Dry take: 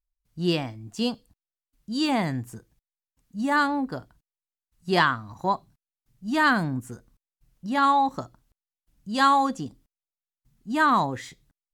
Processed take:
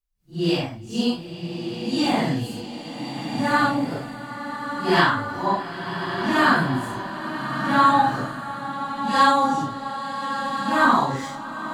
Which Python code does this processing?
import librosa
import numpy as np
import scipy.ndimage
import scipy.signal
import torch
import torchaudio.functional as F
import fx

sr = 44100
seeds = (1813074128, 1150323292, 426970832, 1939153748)

y = fx.phase_scramble(x, sr, seeds[0], window_ms=200)
y = fx.rev_bloom(y, sr, seeds[1], attack_ms=1470, drr_db=4.5)
y = y * librosa.db_to_amplitude(3.0)